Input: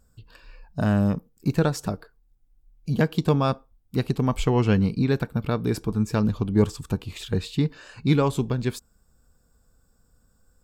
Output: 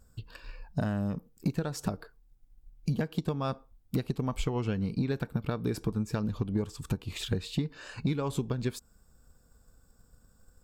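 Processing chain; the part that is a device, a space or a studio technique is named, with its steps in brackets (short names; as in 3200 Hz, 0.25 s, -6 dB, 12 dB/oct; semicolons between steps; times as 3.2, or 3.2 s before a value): drum-bus smash (transient shaper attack +6 dB, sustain +1 dB; compressor 12:1, threshold -25 dBFS, peak gain reduction 16 dB; soft clip -17 dBFS, distortion -21 dB)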